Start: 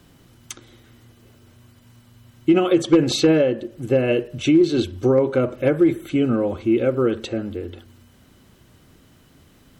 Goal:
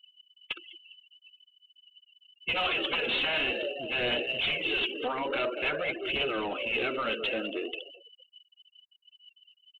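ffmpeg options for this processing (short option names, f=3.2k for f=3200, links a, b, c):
-filter_complex "[0:a]lowpass=f=2.8k:t=q:w=9.6,asplit=2[a][b];[b]asplit=4[c][d][e][f];[c]adelay=204,afreqshift=50,volume=-17.5dB[g];[d]adelay=408,afreqshift=100,volume=-23.7dB[h];[e]adelay=612,afreqshift=150,volume=-29.9dB[i];[f]adelay=816,afreqshift=200,volume=-36.1dB[j];[g][h][i][j]amix=inputs=4:normalize=0[k];[a][k]amix=inputs=2:normalize=0,afftfilt=real='re*lt(hypot(re,im),0.631)':imag='im*lt(hypot(re,im),0.631)':win_size=1024:overlap=0.75,highpass=420,afftfilt=real='re*gte(hypot(re,im),0.0178)':imag='im*gte(hypot(re,im),0.0178)':win_size=1024:overlap=0.75,aresample=8000,asoftclip=type=tanh:threshold=-26dB,aresample=44100,aphaser=in_gain=1:out_gain=1:delay=4.4:decay=0.35:speed=0.48:type=triangular"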